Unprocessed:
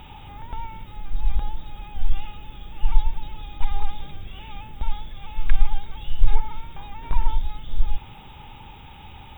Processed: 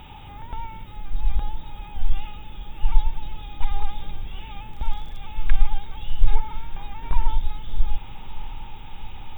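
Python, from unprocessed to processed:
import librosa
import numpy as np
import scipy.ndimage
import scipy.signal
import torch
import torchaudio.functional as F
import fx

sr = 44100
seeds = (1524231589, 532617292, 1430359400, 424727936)

y = fx.dmg_crackle(x, sr, seeds[0], per_s=75.0, level_db=-38.0, at=(4.71, 5.17), fade=0.02)
y = fx.echo_diffused(y, sr, ms=1236, feedback_pct=46, wet_db=-15)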